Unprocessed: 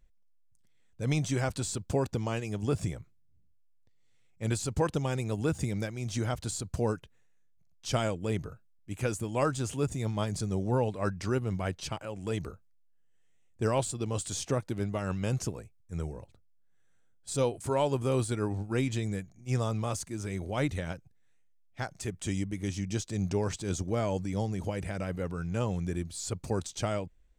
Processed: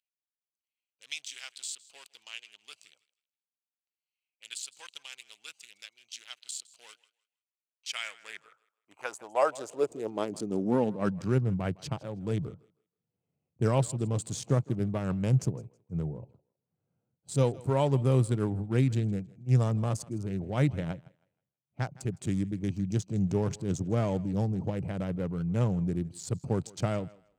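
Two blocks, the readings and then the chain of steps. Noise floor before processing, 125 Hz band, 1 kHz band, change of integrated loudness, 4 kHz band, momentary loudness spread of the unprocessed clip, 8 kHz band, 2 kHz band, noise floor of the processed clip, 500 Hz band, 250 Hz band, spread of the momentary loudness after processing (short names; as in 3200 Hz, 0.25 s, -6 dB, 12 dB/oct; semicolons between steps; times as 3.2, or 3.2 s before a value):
-63 dBFS, +2.5 dB, -1.0 dB, +1.5 dB, -1.0 dB, 8 LU, -3.5 dB, -2.5 dB, under -85 dBFS, -0.5 dB, +1.5 dB, 17 LU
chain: Wiener smoothing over 25 samples; thinning echo 0.16 s, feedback 24%, high-pass 300 Hz, level -21 dB; high-pass sweep 3000 Hz -> 130 Hz, 7.63–11.38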